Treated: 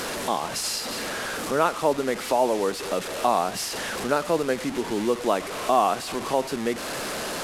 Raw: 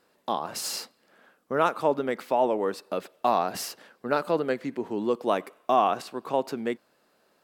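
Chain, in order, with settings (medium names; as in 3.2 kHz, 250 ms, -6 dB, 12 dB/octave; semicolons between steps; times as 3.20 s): one-bit delta coder 64 kbps, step -30.5 dBFS; in parallel at +0.5 dB: compression, threshold -34 dBFS, peak gain reduction 16.5 dB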